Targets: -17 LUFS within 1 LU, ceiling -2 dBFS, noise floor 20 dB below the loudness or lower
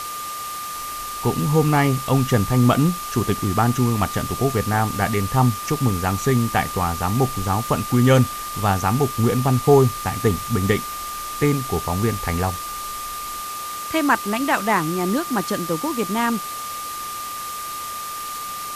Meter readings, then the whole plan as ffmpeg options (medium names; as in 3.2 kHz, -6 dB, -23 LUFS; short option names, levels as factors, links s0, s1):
steady tone 1.2 kHz; tone level -29 dBFS; noise floor -30 dBFS; noise floor target -42 dBFS; loudness -21.5 LUFS; peak level -2.5 dBFS; loudness target -17.0 LUFS
-> -af "bandreject=f=1200:w=30"
-af "afftdn=nr=12:nf=-30"
-af "volume=1.68,alimiter=limit=0.794:level=0:latency=1"